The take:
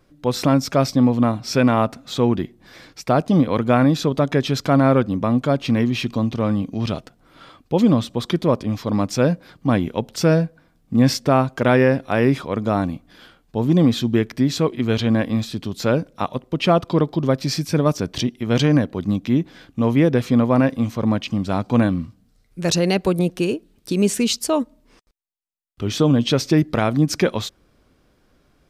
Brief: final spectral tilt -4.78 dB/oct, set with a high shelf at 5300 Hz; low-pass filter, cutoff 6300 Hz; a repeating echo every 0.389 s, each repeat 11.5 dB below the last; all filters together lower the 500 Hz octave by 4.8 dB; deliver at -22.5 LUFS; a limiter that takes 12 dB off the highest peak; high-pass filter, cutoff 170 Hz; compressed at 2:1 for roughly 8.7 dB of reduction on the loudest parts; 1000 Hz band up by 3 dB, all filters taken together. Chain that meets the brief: HPF 170 Hz; LPF 6300 Hz; bell 500 Hz -8 dB; bell 1000 Hz +6.5 dB; high shelf 5300 Hz +3.5 dB; compressor 2:1, threshold -29 dBFS; limiter -21.5 dBFS; feedback echo 0.389 s, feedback 27%, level -11.5 dB; gain +10 dB

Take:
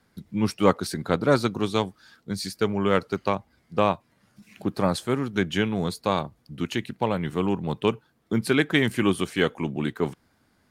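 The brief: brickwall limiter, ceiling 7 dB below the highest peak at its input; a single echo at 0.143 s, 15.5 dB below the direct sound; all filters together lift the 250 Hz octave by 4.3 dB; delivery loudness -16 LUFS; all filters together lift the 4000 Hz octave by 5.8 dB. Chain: bell 250 Hz +5.5 dB; bell 4000 Hz +7.5 dB; limiter -9.5 dBFS; echo 0.143 s -15.5 dB; gain +8.5 dB

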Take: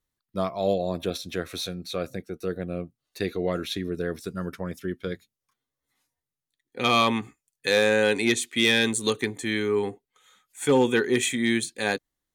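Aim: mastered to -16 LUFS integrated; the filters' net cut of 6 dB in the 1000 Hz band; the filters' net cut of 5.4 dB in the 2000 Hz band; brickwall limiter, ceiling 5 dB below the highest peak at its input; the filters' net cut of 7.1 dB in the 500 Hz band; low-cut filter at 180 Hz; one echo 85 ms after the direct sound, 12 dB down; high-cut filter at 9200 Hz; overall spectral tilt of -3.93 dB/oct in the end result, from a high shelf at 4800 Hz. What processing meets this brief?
HPF 180 Hz; LPF 9200 Hz; bell 500 Hz -7.5 dB; bell 1000 Hz -4 dB; bell 2000 Hz -4 dB; high shelf 4800 Hz -7 dB; limiter -19 dBFS; echo 85 ms -12 dB; gain +16.5 dB

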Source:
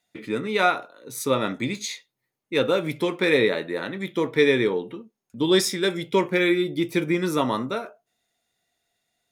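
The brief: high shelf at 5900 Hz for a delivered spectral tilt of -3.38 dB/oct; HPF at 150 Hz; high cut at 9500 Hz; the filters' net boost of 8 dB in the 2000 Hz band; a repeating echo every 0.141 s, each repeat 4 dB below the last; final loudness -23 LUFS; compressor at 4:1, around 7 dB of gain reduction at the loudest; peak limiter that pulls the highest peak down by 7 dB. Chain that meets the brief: HPF 150 Hz; LPF 9500 Hz; bell 2000 Hz +9 dB; high shelf 5900 Hz +5.5 dB; compressor 4:1, threshold -19 dBFS; limiter -14 dBFS; feedback echo 0.141 s, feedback 63%, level -4 dB; gain +1.5 dB

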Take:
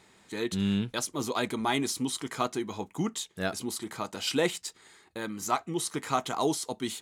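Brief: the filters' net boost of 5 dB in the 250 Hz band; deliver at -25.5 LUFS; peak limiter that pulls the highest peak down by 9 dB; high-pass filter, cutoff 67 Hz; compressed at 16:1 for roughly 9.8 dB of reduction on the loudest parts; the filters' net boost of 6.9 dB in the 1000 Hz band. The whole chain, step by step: HPF 67 Hz; bell 250 Hz +6 dB; bell 1000 Hz +8.5 dB; compressor 16:1, threshold -25 dBFS; gain +8 dB; limiter -13 dBFS

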